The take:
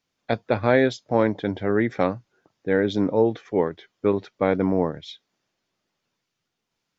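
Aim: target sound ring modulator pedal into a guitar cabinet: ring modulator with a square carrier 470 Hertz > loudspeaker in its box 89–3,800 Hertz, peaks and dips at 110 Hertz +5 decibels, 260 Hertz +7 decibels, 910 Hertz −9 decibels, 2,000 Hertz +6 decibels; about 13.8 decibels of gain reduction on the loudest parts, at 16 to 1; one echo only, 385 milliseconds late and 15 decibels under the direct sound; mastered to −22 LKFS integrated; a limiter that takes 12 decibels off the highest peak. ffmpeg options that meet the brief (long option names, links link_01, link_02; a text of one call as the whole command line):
ffmpeg -i in.wav -af "acompressor=threshold=-27dB:ratio=16,alimiter=limit=-24dB:level=0:latency=1,aecho=1:1:385:0.178,aeval=exprs='val(0)*sgn(sin(2*PI*470*n/s))':channel_layout=same,highpass=89,equalizer=frequency=110:width_type=q:width=4:gain=5,equalizer=frequency=260:width_type=q:width=4:gain=7,equalizer=frequency=910:width_type=q:width=4:gain=-9,equalizer=frequency=2000:width_type=q:width=4:gain=6,lowpass=frequency=3800:width=0.5412,lowpass=frequency=3800:width=1.3066,volume=15.5dB" out.wav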